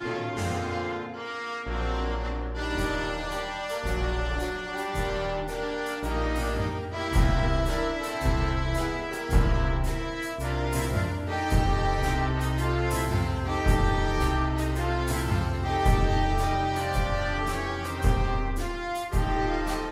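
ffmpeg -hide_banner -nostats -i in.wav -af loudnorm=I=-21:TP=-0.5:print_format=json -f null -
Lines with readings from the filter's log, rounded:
"input_i" : "-28.1",
"input_tp" : "-11.2",
"input_lra" : "3.9",
"input_thresh" : "-38.1",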